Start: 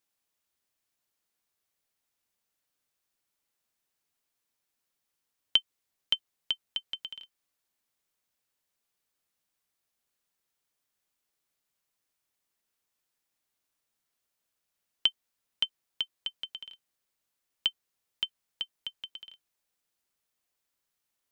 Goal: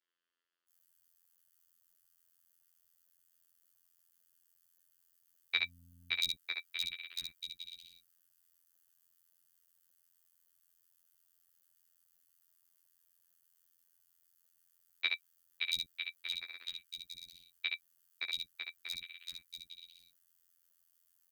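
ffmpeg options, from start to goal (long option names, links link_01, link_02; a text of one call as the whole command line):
ffmpeg -i in.wav -filter_complex "[0:a]aeval=exprs='val(0)*sin(2*PI*740*n/s)':channel_layout=same,acrossover=split=270|3600[link_01][link_02][link_03];[link_03]adelay=680[link_04];[link_01]adelay=720[link_05];[link_05][link_02][link_04]amix=inputs=3:normalize=0,asettb=1/sr,asplit=3[link_06][link_07][link_08];[link_06]atrim=end=5.574[link_09];[link_07]atrim=start=5.57:end=6.15,asetpts=PTS-STARTPTS,afade=type=in:duration=0.004:curve=qsin,afade=type=out:start_time=0.576:duration=0.004:curve=qsin,aeval=exprs='val(0)+0.001*(sin(2*PI*50*n/s)+sin(2*PI*2*50*n/s)/2+sin(2*PI*3*50*n/s)/3+sin(2*PI*4*50*n/s)/4+sin(2*PI*5*50*n/s)/5)':channel_layout=same[link_10];[link_08]atrim=start=6.146[link_11];[link_09][link_10]acrossfade=duration=0.004:curve1=hsin:curve2=qsin[link_12];[link_12][link_11]acrossfade=duration=0.004:curve1=qsin:curve2=hsin,afftfilt=real='hypot(re,im)*cos(PI*b)':imag='0':win_size=2048:overlap=0.75,asplit=2[link_13][link_14];[link_14]aecho=0:1:11|69:0.596|0.562[link_15];[link_13][link_15]amix=inputs=2:normalize=0,crystalizer=i=3:c=0" out.wav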